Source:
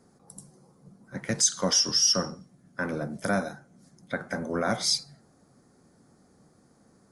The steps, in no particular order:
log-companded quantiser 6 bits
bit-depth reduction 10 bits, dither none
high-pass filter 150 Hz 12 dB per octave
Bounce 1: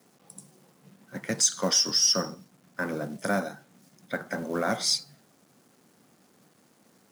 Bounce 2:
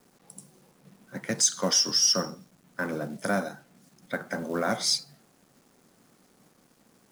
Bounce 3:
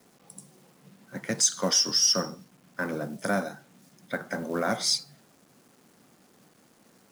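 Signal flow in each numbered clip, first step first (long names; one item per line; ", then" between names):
bit-depth reduction, then log-companded quantiser, then high-pass filter
high-pass filter, then bit-depth reduction, then log-companded quantiser
bit-depth reduction, then high-pass filter, then log-companded quantiser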